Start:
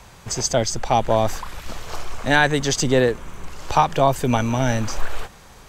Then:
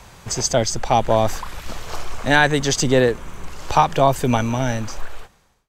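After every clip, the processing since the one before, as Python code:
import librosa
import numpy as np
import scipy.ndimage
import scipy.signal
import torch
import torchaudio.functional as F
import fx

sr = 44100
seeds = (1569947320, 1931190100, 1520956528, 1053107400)

y = fx.fade_out_tail(x, sr, length_s=1.42)
y = y * 10.0 ** (1.5 / 20.0)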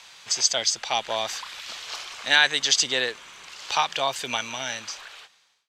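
y = fx.bandpass_q(x, sr, hz=3700.0, q=1.3)
y = y * 10.0 ** (5.5 / 20.0)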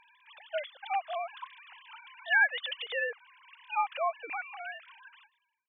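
y = fx.sine_speech(x, sr)
y = y * 10.0 ** (-8.0 / 20.0)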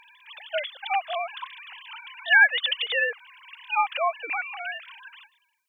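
y = fx.high_shelf(x, sr, hz=2200.0, db=11.0)
y = y * 10.0 ** (4.0 / 20.0)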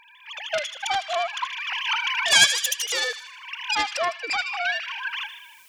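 y = fx.self_delay(x, sr, depth_ms=0.42)
y = fx.recorder_agc(y, sr, target_db=-16.0, rise_db_per_s=21.0, max_gain_db=30)
y = fx.echo_wet_highpass(y, sr, ms=78, feedback_pct=52, hz=2400.0, wet_db=-8.5)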